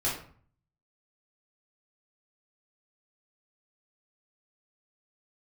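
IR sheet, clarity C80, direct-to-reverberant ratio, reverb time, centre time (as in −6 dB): 9.5 dB, −8.0 dB, 0.50 s, 37 ms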